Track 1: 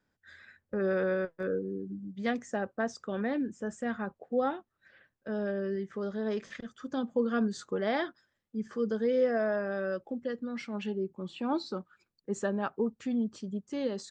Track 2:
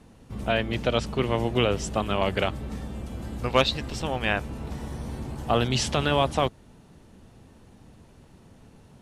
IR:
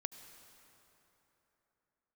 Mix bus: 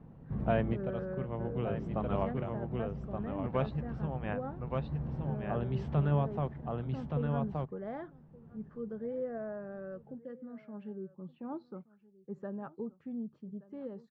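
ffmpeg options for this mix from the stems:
-filter_complex "[0:a]volume=-10.5dB,asplit=3[a][b][c];[b]volume=-20.5dB[d];[1:a]volume=-4dB,asplit=2[e][f];[f]volume=-11dB[g];[c]apad=whole_len=397559[h];[e][h]sidechaincompress=threshold=-47dB:ratio=8:attack=16:release=1080[i];[d][g]amix=inputs=2:normalize=0,aecho=0:1:1173:1[j];[a][i][j]amix=inputs=3:normalize=0,lowpass=1.2k,equalizer=f=150:t=o:w=0.41:g=14"

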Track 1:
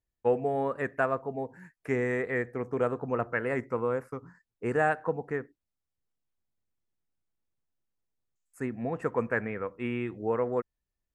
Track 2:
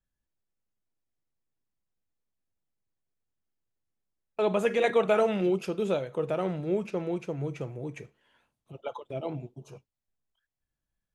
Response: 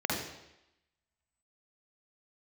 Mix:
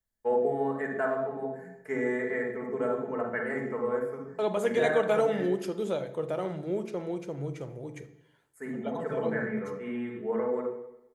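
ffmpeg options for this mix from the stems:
-filter_complex "[0:a]aecho=1:1:4.6:0.67,volume=-12dB,asplit=2[a][b];[b]volume=-3.5dB[c];[1:a]volume=-4dB,asplit=3[d][e][f];[e]volume=-19dB[g];[f]apad=whole_len=491726[h];[a][h]sidechaincompress=threshold=-48dB:ratio=8:attack=16:release=1030[i];[2:a]atrim=start_sample=2205[j];[c][g]amix=inputs=2:normalize=0[k];[k][j]afir=irnorm=-1:irlink=0[l];[i][d][l]amix=inputs=3:normalize=0,highshelf=f=6k:g=7,bandreject=f=2.6k:w=5.7"

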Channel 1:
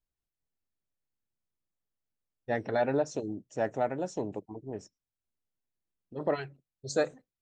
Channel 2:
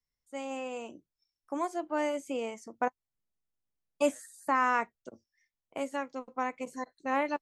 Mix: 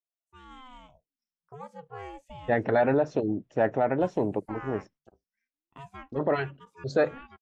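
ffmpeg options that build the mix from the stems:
-filter_complex "[0:a]lowpass=1.7k,agate=range=-33dB:threshold=-55dB:ratio=3:detection=peak,alimiter=limit=-23dB:level=0:latency=1:release=27,volume=-4dB,asplit=2[a][b];[1:a]equalizer=f=7.4k:t=o:w=2.6:g=-12.5,aeval=exprs='val(0)*sin(2*PI*420*n/s+420*0.65/0.3*sin(2*PI*0.3*n/s))':c=same,volume=-19.5dB[c];[b]apad=whole_len=326918[d];[c][d]sidechaincompress=threshold=-45dB:ratio=3:attack=49:release=688[e];[a][e]amix=inputs=2:normalize=0,equalizer=f=3.5k:w=0.69:g=8,dynaudnorm=f=250:g=3:m=12dB"

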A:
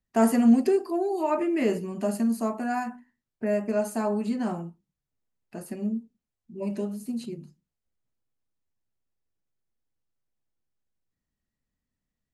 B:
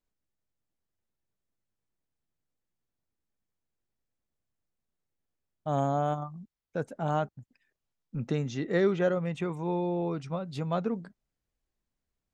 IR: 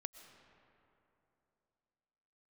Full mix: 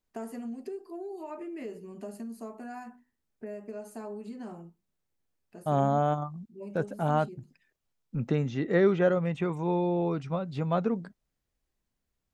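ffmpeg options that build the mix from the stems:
-filter_complex "[0:a]equalizer=f=420:t=o:w=0.37:g=6.5,acompressor=threshold=-26dB:ratio=4,volume=-11dB[a];[1:a]acrossover=split=3200[b][c];[c]acompressor=threshold=-58dB:ratio=4:attack=1:release=60[d];[b][d]amix=inputs=2:normalize=0,volume=2.5dB[e];[a][e]amix=inputs=2:normalize=0"

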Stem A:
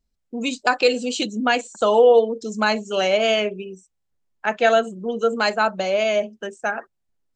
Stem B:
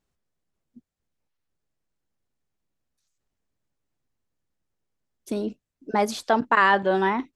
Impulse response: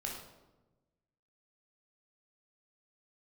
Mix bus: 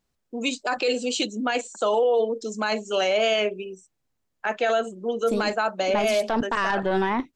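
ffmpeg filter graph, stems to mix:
-filter_complex "[0:a]highpass=260,volume=0dB[a];[1:a]acontrast=67,aeval=exprs='0.75*(cos(1*acos(clip(val(0)/0.75,-1,1)))-cos(1*PI/2))+0.0841*(cos(4*acos(clip(val(0)/0.75,-1,1)))-cos(4*PI/2))':c=same,volume=-5dB[b];[a][b]amix=inputs=2:normalize=0,alimiter=limit=-14.5dB:level=0:latency=1:release=12"

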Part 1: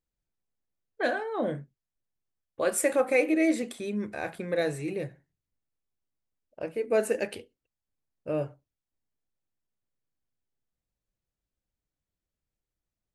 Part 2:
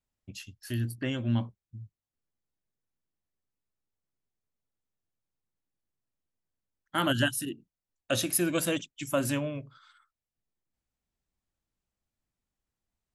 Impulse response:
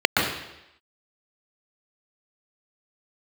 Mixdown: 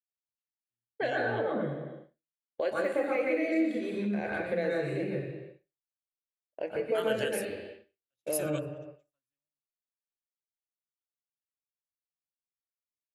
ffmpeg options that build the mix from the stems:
-filter_complex "[0:a]deesser=1,volume=-11dB,asplit=3[a][b][c];[b]volume=-3dB[d];[1:a]equalizer=f=260:t=o:w=2.8:g=-9.5,volume=1dB[e];[c]apad=whole_len=579568[f];[e][f]sidechaingate=range=-33dB:threshold=-56dB:ratio=16:detection=peak[g];[2:a]atrim=start_sample=2205[h];[d][h]afir=irnorm=-1:irlink=0[i];[a][g][i]amix=inputs=3:normalize=0,agate=range=-33dB:threshold=-44dB:ratio=3:detection=peak,acompressor=threshold=-34dB:ratio=2"

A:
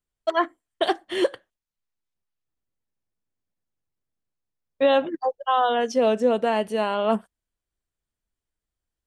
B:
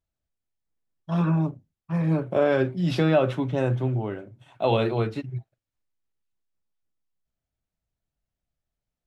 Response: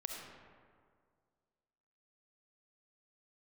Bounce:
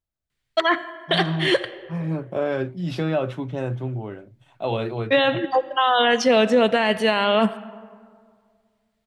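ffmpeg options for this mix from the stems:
-filter_complex "[0:a]equalizer=f=125:t=o:w=1:g=11,equalizer=f=2k:t=o:w=1:g=11,equalizer=f=4k:t=o:w=1:g=8,adelay=300,volume=2.5dB,asplit=2[a][b];[b]volume=-13.5dB[c];[1:a]volume=-3dB,asplit=2[d][e];[e]apad=whole_len=413111[f];[a][f]sidechaincompress=threshold=-27dB:ratio=8:attack=16:release=916[g];[2:a]atrim=start_sample=2205[h];[c][h]afir=irnorm=-1:irlink=0[i];[g][d][i]amix=inputs=3:normalize=0,alimiter=limit=-8.5dB:level=0:latency=1:release=12"

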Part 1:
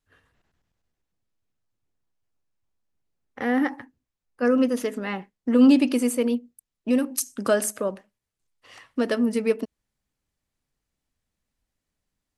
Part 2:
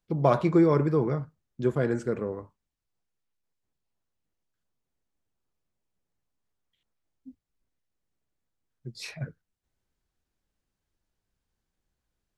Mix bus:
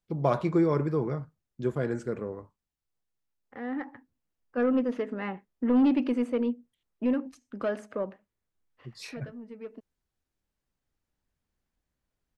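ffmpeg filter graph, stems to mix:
-filter_complex "[0:a]lowpass=2.2k,asoftclip=type=tanh:threshold=-13.5dB,adelay=150,volume=-3.5dB[a];[1:a]volume=-3.5dB,asplit=2[b][c];[c]apad=whole_len=552546[d];[a][d]sidechaincompress=threshold=-51dB:ratio=6:attack=8.5:release=1340[e];[e][b]amix=inputs=2:normalize=0"

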